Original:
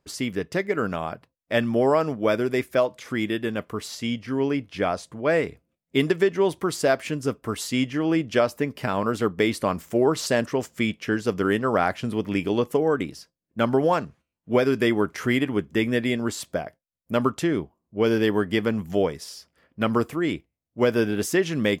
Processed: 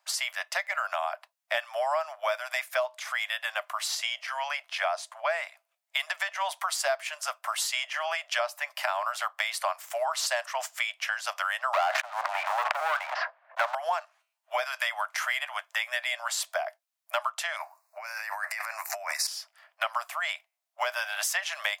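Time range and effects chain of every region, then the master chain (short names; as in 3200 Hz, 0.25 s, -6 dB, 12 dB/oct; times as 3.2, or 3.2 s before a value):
11.73–13.75 LPF 1800 Hz 24 dB/oct + sample leveller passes 3 + sustainer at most 27 dB/s
17.56–19.27 Butterworth band-stop 3200 Hz, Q 2 + tilt shelf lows -6.5 dB, about 740 Hz + negative-ratio compressor -34 dBFS
whole clip: steep high-pass 620 Hz 96 dB/oct; compressor 4:1, threshold -34 dBFS; gain +7 dB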